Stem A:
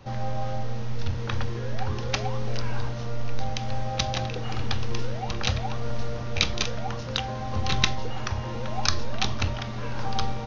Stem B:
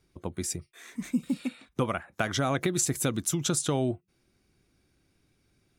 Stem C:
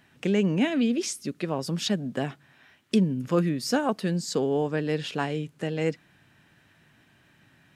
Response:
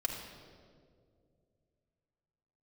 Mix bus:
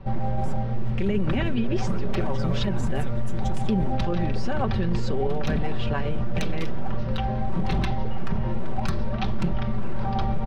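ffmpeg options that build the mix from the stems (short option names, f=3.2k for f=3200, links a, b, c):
-filter_complex "[0:a]lowpass=4.3k,aemphasis=mode=reproduction:type=riaa,aeval=exprs='0.355*(abs(mod(val(0)/0.355+3,4)-2)-1)':c=same,volume=-0.5dB[a];[1:a]acrusher=bits=6:mix=0:aa=0.000001,lowpass=f=1.9k:p=1,volume=-8dB[b];[2:a]lowpass=3.2k,adelay=750,volume=1dB[c];[a][b][c]amix=inputs=3:normalize=0,lowshelf=f=120:g=-6,aecho=1:1:5.2:0.57,alimiter=limit=-15.5dB:level=0:latency=1:release=25"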